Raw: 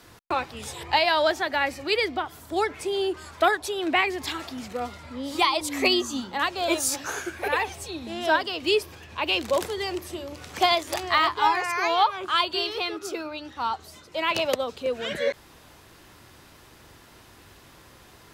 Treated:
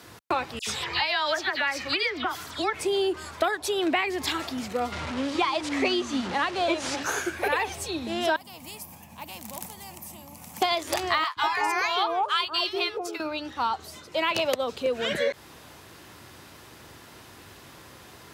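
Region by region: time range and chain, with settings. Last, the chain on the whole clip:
0.59–2.73 band shelf 2600 Hz +8.5 dB 2.9 oct + compressor 2:1, threshold -32 dBFS + dispersion lows, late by 80 ms, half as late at 2400 Hz
4.92–7.03 delta modulation 64 kbps, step -29 dBFS + Bessel low-pass 3700 Hz
8.36–10.62 EQ curve 110 Hz 0 dB, 210 Hz +13 dB, 400 Hz -25 dB, 870 Hz +4 dB, 1400 Hz -25 dB, 2300 Hz -15 dB, 3800 Hz -22 dB, 13000 Hz +4 dB + companded quantiser 8-bit + spectral compressor 2:1
11.24–13.2 low shelf 140 Hz -6 dB + expander -29 dBFS + three bands offset in time highs, lows, mids 0.12/0.19 s, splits 180/850 Hz
whole clip: HPF 77 Hz; compressor 6:1, threshold -25 dBFS; gain +3.5 dB

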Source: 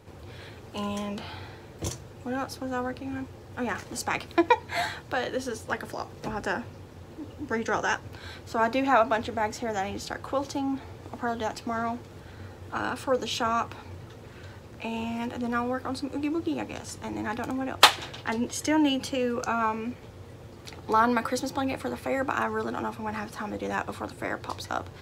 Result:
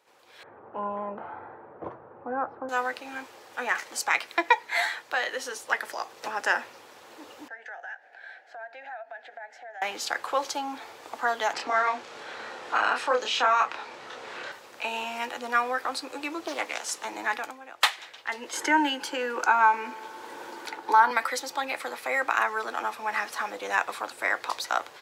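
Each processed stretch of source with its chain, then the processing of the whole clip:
0.43–2.69 LPF 1300 Hz 24 dB/oct + low shelf 230 Hz +11.5 dB
7.48–9.82 double band-pass 1100 Hz, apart 1.2 oct + compressor 4:1, threshold -44 dBFS
11.53–14.52 air absorption 72 m + doubler 28 ms -2.5 dB + three-band squash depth 40%
16.47–17.05 HPF 200 Hz + bell 8700 Hz +3 dB 1.7 oct + Doppler distortion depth 0.37 ms
18.53–21.11 resonator 110 Hz, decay 1.9 s, mix 40% + small resonant body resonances 320/900/1500 Hz, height 12 dB, ringing for 25 ms + three-band squash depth 40%
whole clip: HPF 730 Hz 12 dB/oct; dynamic EQ 2000 Hz, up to +7 dB, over -49 dBFS, Q 3.9; AGC gain up to 13 dB; gain -6.5 dB

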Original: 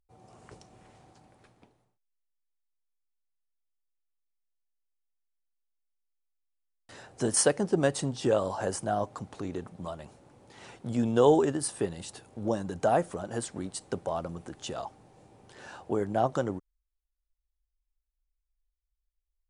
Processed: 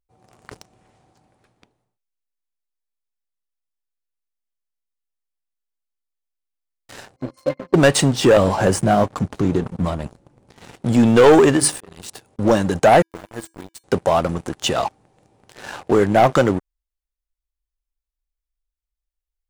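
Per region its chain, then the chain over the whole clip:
7.16–7.74 HPF 290 Hz 6 dB/oct + octave resonator C, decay 0.13 s
8.37–10.74 low shelf 290 Hz +11.5 dB + flange 1.3 Hz, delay 3.7 ms, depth 2.5 ms, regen -64%
11.48–12.39 notches 50/100/150/200/250/300/350/400 Hz + auto swell 0.452 s
13.02–13.84 sample gate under -35 dBFS + resonator 330 Hz, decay 0.32 s, harmonics odd, mix 80%
whole clip: dynamic EQ 2300 Hz, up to +7 dB, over -47 dBFS, Q 0.99; sample leveller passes 3; gain +4 dB

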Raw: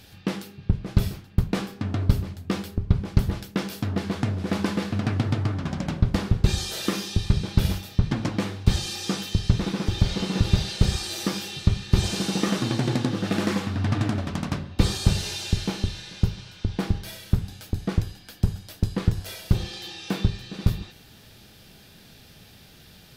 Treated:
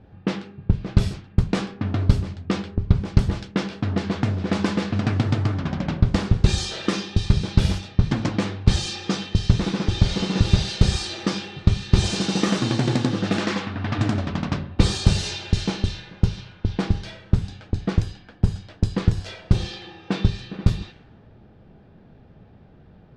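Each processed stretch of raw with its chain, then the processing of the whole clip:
13.38–13.99 LPF 4000 Hz 6 dB/oct + tilt +2 dB/oct
whole clip: low-pass opened by the level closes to 800 Hz, open at -19.5 dBFS; LPF 8700 Hz 24 dB/oct; gain +3 dB

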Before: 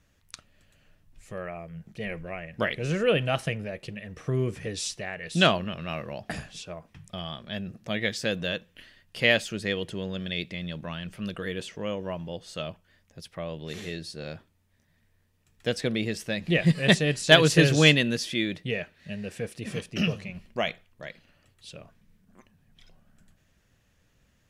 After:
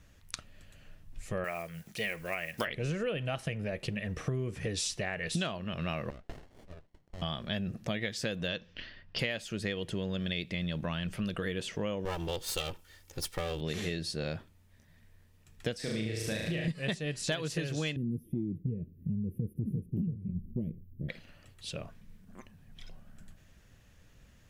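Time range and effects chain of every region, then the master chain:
1.44–2.67 block floating point 7-bit + tilt +3.5 dB/oct
6.1–7.22 double band-pass 1600 Hz, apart 0.87 oct + running maximum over 33 samples
8.48–9.19 resonant high shelf 7200 Hz -11.5 dB, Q 3 + low-pass opened by the level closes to 1700 Hz, open at -31 dBFS
12.05–13.61 minimum comb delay 2.2 ms + high shelf 4000 Hz +11.5 dB
15.76–16.68 compressor 2:1, threshold -38 dBFS + flutter echo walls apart 6.3 m, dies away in 0.91 s
17.96–21.09 inverse Chebyshev band-stop 700–8000 Hz + bell 110 Hz +8.5 dB 2.9 oct
whole clip: low shelf 91 Hz +6 dB; compressor 16:1, threshold -34 dBFS; gain +4 dB

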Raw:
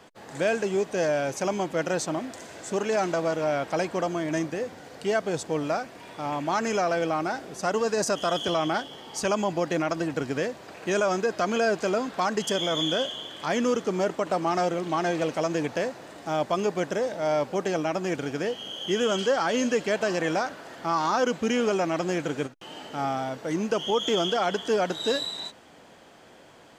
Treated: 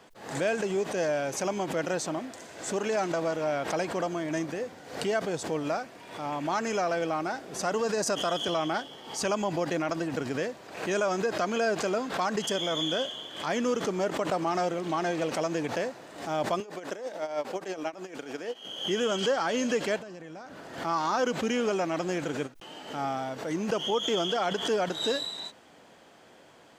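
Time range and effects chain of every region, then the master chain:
16.6–18.65 HPF 270 Hz + dB-linear tremolo 6.3 Hz, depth 25 dB
19.98–20.79 low shelf 280 Hz +10.5 dB + compressor 16:1, threshold -36 dBFS
whole clip: low shelf 83 Hz -6.5 dB; backwards sustainer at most 92 dB/s; gain -3 dB

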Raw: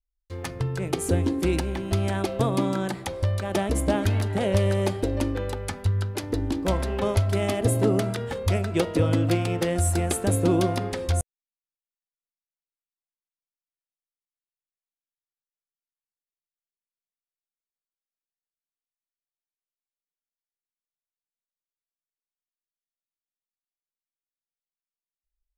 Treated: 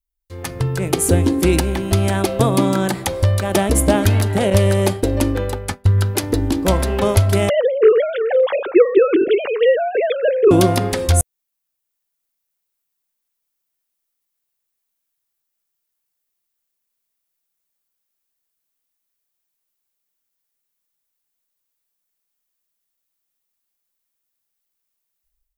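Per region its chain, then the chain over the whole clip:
4.5–5.98 expander -28 dBFS + mismatched tape noise reduction decoder only
7.49–10.51 sine-wave speech + air absorption 98 m
whole clip: high shelf 9900 Hz +12 dB; AGC gain up to 11.5 dB

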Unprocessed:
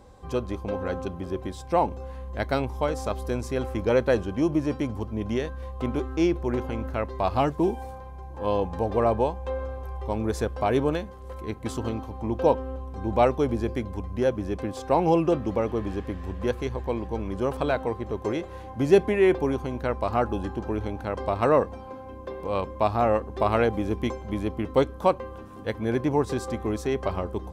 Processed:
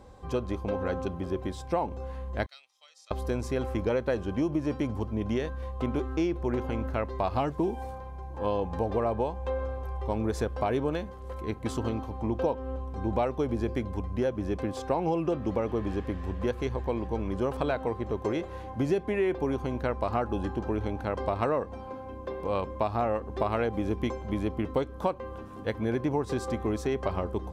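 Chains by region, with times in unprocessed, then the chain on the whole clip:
2.46–3.11 ladder band-pass 5000 Hz, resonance 20% + comb 1.6 ms, depth 43%
whole clip: high shelf 6900 Hz -5 dB; compressor 6:1, threshold -24 dBFS

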